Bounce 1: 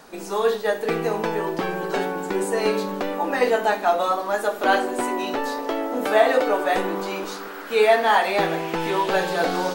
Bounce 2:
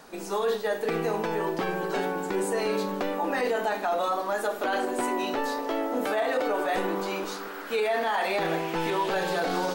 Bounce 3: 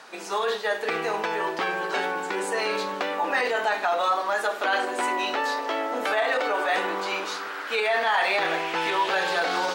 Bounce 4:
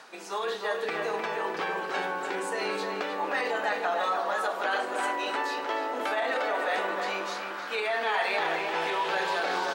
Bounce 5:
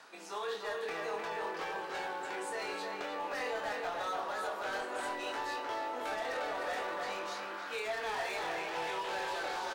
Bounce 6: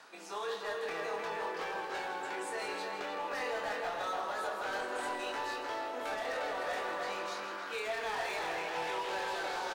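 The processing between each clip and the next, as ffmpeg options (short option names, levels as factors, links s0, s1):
-af "alimiter=limit=0.158:level=0:latency=1:release=23,volume=0.75"
-af "bandpass=f=2300:t=q:w=0.53:csg=0,volume=2.37"
-filter_complex "[0:a]areverse,acompressor=mode=upward:threshold=0.0224:ratio=2.5,areverse,asplit=2[s0][s1];[s1]adelay=306,lowpass=f=2300:p=1,volume=0.668,asplit=2[s2][s3];[s3]adelay=306,lowpass=f=2300:p=1,volume=0.51,asplit=2[s4][s5];[s5]adelay=306,lowpass=f=2300:p=1,volume=0.51,asplit=2[s6][s7];[s7]adelay=306,lowpass=f=2300:p=1,volume=0.51,asplit=2[s8][s9];[s9]adelay=306,lowpass=f=2300:p=1,volume=0.51,asplit=2[s10][s11];[s11]adelay=306,lowpass=f=2300:p=1,volume=0.51,asplit=2[s12][s13];[s13]adelay=306,lowpass=f=2300:p=1,volume=0.51[s14];[s0][s2][s4][s6][s8][s10][s12][s14]amix=inputs=8:normalize=0,volume=0.531"
-filter_complex "[0:a]acrossover=split=420|660|6300[s0][s1][s2][s3];[s0]alimiter=level_in=6.68:limit=0.0631:level=0:latency=1,volume=0.15[s4];[s2]asoftclip=type=hard:threshold=0.0266[s5];[s4][s1][s5][s3]amix=inputs=4:normalize=0,asplit=2[s6][s7];[s7]adelay=24,volume=0.562[s8];[s6][s8]amix=inputs=2:normalize=0,volume=0.447"
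-af "aecho=1:1:162:0.335"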